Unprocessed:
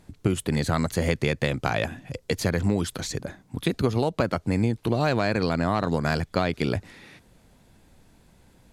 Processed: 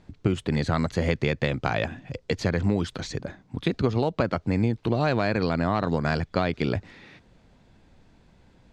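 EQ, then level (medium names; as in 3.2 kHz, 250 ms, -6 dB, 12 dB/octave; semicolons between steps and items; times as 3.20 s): distance through air 150 m; treble shelf 5 kHz +6 dB; 0.0 dB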